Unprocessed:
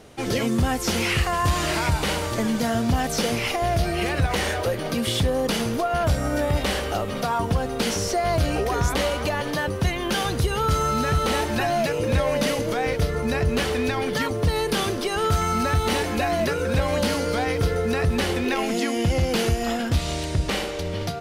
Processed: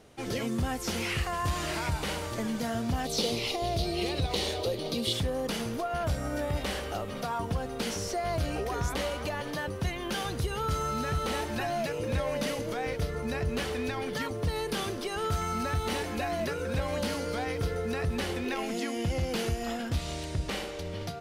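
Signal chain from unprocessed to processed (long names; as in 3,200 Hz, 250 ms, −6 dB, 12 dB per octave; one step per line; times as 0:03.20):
0:03.05–0:05.13: graphic EQ with 15 bands 400 Hz +6 dB, 1,600 Hz −11 dB, 4,000 Hz +12 dB
level −8.5 dB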